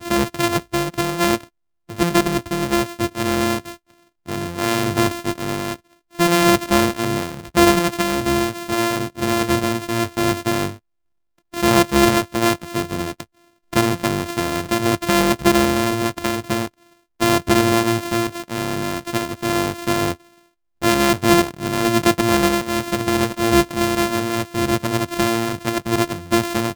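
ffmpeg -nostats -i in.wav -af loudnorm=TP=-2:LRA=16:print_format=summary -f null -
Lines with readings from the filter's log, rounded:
Input Integrated:    -19.7 LUFS
Input True Peak:      -0.4 dBTP
Input LRA:             3.3 LU
Input Threshold:     -30.1 LUFS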